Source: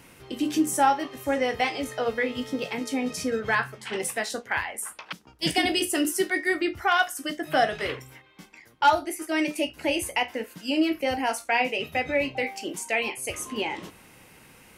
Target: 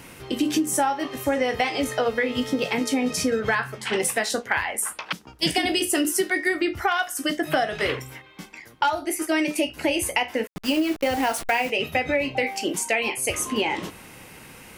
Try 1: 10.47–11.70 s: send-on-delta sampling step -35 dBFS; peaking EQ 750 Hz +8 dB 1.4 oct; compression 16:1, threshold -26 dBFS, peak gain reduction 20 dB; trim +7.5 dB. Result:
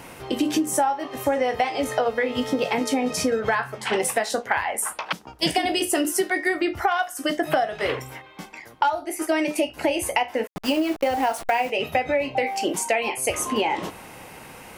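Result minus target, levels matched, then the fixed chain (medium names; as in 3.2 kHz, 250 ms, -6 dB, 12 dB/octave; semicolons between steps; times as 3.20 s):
1 kHz band +2.5 dB
10.47–11.70 s: send-on-delta sampling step -35 dBFS; compression 16:1, threshold -26 dBFS, peak gain reduction 13 dB; trim +7.5 dB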